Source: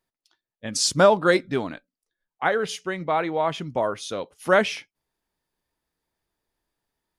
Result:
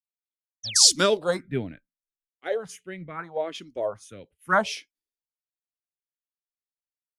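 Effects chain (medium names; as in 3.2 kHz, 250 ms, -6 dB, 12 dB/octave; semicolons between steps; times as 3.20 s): phase shifter stages 4, 0.76 Hz, lowest notch 120–1100 Hz; painted sound fall, 0.63–0.96 s, 210–6600 Hz -32 dBFS; three bands expanded up and down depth 100%; trim -2.5 dB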